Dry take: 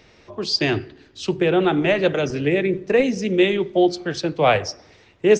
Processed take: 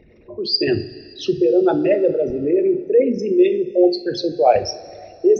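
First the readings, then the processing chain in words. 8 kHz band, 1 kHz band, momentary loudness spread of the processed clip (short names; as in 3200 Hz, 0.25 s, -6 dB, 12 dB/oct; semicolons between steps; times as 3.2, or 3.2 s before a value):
n/a, +1.5 dB, 11 LU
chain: formant sharpening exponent 3; two-slope reverb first 0.27 s, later 2.8 s, from -18 dB, DRR 6 dB; gain +1.5 dB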